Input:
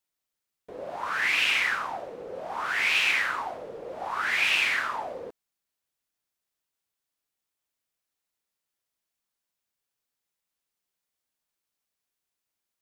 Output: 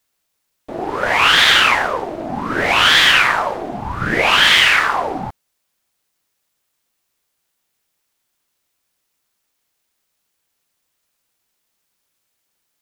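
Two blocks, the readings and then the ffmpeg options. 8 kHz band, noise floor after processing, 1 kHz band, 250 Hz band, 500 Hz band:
+14.0 dB, -72 dBFS, +14.5 dB, +21.0 dB, +14.0 dB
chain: -af "apsyclip=7.94,aeval=exprs='val(0)*sin(2*PI*480*n/s+480*0.7/0.7*sin(2*PI*0.7*n/s))':c=same,volume=0.841"

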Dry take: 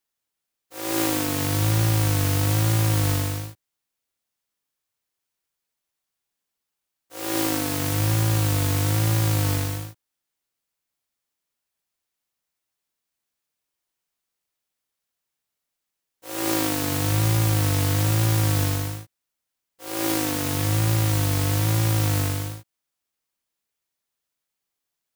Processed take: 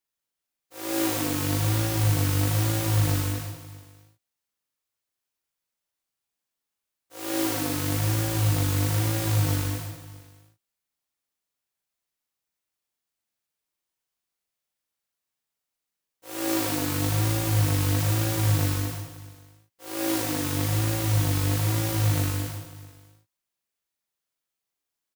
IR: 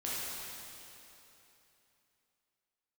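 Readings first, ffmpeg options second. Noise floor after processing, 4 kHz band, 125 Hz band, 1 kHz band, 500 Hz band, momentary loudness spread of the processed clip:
under -85 dBFS, -3.0 dB, -2.5 dB, -3.0 dB, -2.5 dB, 12 LU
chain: -af "aecho=1:1:40|104|206.4|370.2|632.4:0.631|0.398|0.251|0.158|0.1,volume=0.562"

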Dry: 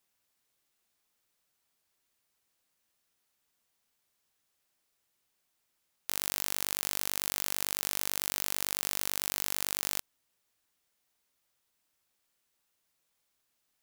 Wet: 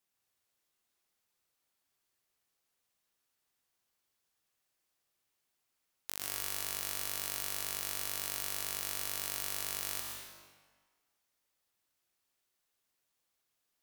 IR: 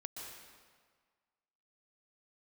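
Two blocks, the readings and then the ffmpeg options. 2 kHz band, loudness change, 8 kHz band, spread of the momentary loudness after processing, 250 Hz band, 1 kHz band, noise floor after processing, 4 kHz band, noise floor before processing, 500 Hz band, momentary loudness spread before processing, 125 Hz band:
-4.0 dB, -4.0 dB, -4.0 dB, 6 LU, -6.5 dB, -3.5 dB, -83 dBFS, -4.0 dB, -79 dBFS, -4.0 dB, 2 LU, -2.5 dB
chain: -filter_complex "[1:a]atrim=start_sample=2205,asetrate=48510,aresample=44100[s0];[0:a][s0]afir=irnorm=-1:irlink=0"

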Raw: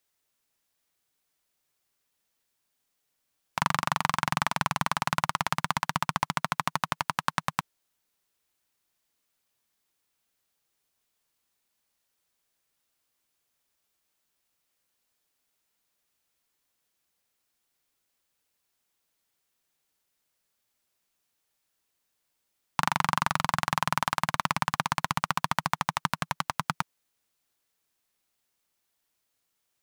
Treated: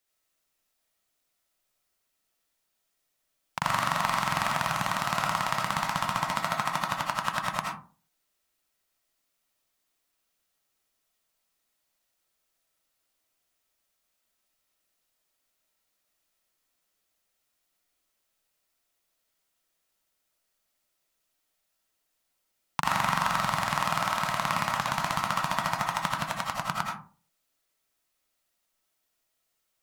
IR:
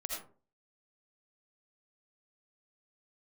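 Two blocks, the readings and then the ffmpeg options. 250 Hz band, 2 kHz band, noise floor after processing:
-1.0 dB, +0.5 dB, -78 dBFS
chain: -filter_complex "[1:a]atrim=start_sample=2205[s0];[0:a][s0]afir=irnorm=-1:irlink=0"

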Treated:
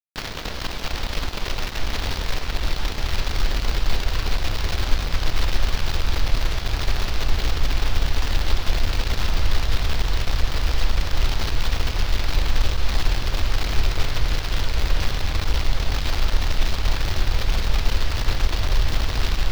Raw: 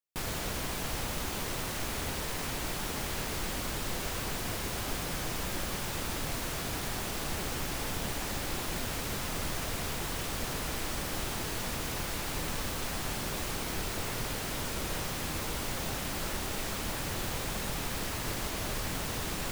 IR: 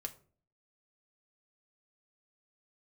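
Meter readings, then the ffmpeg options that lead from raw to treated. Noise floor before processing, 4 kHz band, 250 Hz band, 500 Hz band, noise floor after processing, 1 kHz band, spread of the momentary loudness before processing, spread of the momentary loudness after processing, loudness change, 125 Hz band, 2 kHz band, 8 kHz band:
-36 dBFS, +9.0 dB, +3.5 dB, +4.5 dB, -30 dBFS, +6.0 dB, 0 LU, 3 LU, +8.5 dB, +13.0 dB, +7.0 dB, -1.0 dB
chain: -af "asubboost=boost=9.5:cutoff=65,aeval=exprs='sgn(val(0))*max(abs(val(0))-0.00531,0)':c=same,acrusher=bits=6:dc=4:mix=0:aa=0.000001,highshelf=f=6400:t=q:w=1.5:g=-12.5,volume=1.78"

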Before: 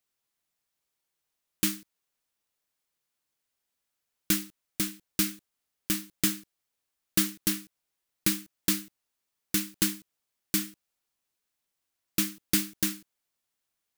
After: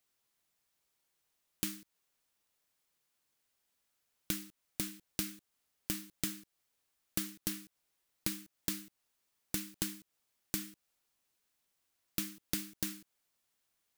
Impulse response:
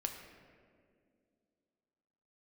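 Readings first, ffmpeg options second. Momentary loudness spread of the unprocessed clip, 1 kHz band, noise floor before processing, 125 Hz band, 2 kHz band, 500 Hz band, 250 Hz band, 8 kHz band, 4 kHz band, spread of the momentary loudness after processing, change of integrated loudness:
10 LU, -9.0 dB, -84 dBFS, -8.5 dB, -10.5 dB, -8.5 dB, -10.5 dB, -10.0 dB, -10.0 dB, 9 LU, -10.0 dB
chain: -af "acompressor=threshold=0.0141:ratio=5,volume=1.33"

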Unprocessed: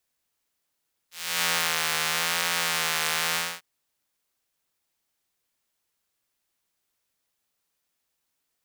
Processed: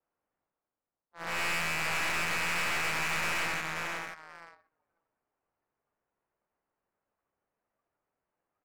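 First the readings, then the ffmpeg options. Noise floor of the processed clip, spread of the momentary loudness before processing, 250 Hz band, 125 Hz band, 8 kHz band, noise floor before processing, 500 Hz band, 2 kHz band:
under -85 dBFS, 8 LU, +1.0 dB, +0.5 dB, -10.5 dB, -79 dBFS, -2.5 dB, -2.0 dB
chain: -filter_complex "[0:a]areverse,acompressor=mode=upward:threshold=0.0355:ratio=2.5,areverse,crystalizer=i=9.5:c=0,adynamicequalizer=threshold=0.00794:dfrequency=640:dqfactor=1.7:tfrequency=640:tqfactor=1.7:attack=5:release=100:ratio=0.375:range=4:mode=boostabove:tftype=bell,lowpass=f=2600:t=q:w=0.5098,lowpass=f=2600:t=q:w=0.6013,lowpass=f=2600:t=q:w=0.9,lowpass=f=2600:t=q:w=2.563,afreqshift=-3100,asplit=2[s0][s1];[s1]adelay=534,lowpass=f=2400:p=1,volume=0.501,asplit=2[s2][s3];[s3]adelay=534,lowpass=f=2400:p=1,volume=0.25,asplit=2[s4][s5];[s5]adelay=534,lowpass=f=2400:p=1,volume=0.25[s6];[s0][s2][s4][s6]amix=inputs=4:normalize=0,crystalizer=i=9:c=0,afftdn=nr=19:nf=-32,adynamicsmooth=sensitivity=7:basefreq=710,aeval=exprs='(tanh(11.2*val(0)+0.7)-tanh(0.7))/11.2':c=same,volume=0.398"

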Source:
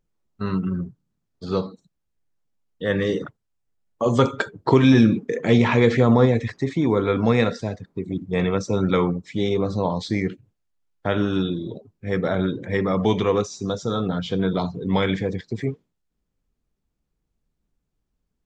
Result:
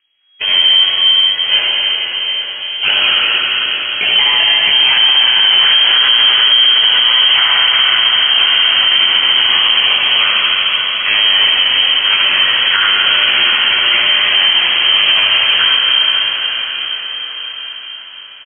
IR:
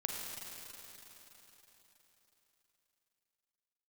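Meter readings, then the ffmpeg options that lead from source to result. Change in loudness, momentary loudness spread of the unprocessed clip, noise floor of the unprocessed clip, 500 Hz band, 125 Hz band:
+13.5 dB, 14 LU, -77 dBFS, -10.0 dB, under -20 dB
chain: -filter_complex "[0:a]equalizer=f=1800:t=o:w=2:g=15,acrossover=split=300|2300[s0][s1][s2];[s1]acompressor=threshold=0.0316:ratio=6[s3];[s0][s3][s2]amix=inputs=3:normalize=0,acrusher=samples=17:mix=1:aa=0.000001:lfo=1:lforange=10.2:lforate=2.8,flanger=delay=20:depth=6.8:speed=0.27,aecho=1:1:17|76:0.398|0.631[s4];[1:a]atrim=start_sample=2205,asetrate=26460,aresample=44100[s5];[s4][s5]afir=irnorm=-1:irlink=0,lowpass=f=2800:t=q:w=0.5098,lowpass=f=2800:t=q:w=0.6013,lowpass=f=2800:t=q:w=0.9,lowpass=f=2800:t=q:w=2.563,afreqshift=-3300,alimiter=level_in=3.98:limit=0.891:release=50:level=0:latency=1,volume=0.891"

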